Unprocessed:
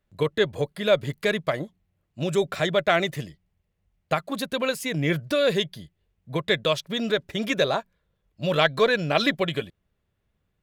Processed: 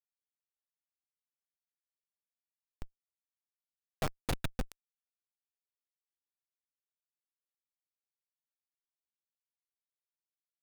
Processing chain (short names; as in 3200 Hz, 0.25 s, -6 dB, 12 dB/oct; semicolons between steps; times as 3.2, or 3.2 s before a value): Doppler pass-by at 4.1, 9 m/s, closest 2.8 m; tilt +4 dB/oct; Schmitt trigger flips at -18.5 dBFS; gain +8 dB